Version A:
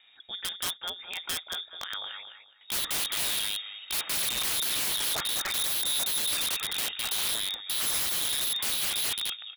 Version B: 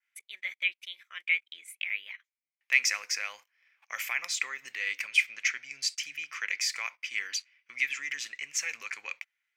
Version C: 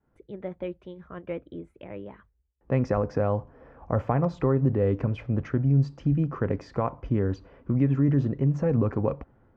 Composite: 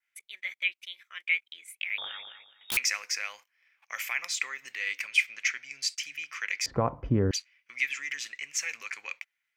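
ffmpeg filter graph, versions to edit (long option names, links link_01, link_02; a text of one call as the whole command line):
ffmpeg -i take0.wav -i take1.wav -i take2.wav -filter_complex "[1:a]asplit=3[link_01][link_02][link_03];[link_01]atrim=end=1.982[link_04];[0:a]atrim=start=1.978:end=2.772[link_05];[link_02]atrim=start=2.768:end=6.662[link_06];[2:a]atrim=start=6.658:end=7.312[link_07];[link_03]atrim=start=7.308[link_08];[link_04][link_05]acrossfade=duration=0.004:curve1=hsin:curve2=hsin[link_09];[link_09][link_06]acrossfade=duration=0.004:curve1=hsin:curve2=hsin[link_10];[link_10][link_07]acrossfade=duration=0.004:curve1=hsin:curve2=hsin[link_11];[link_11][link_08]acrossfade=duration=0.004:curve1=hsin:curve2=hsin" out.wav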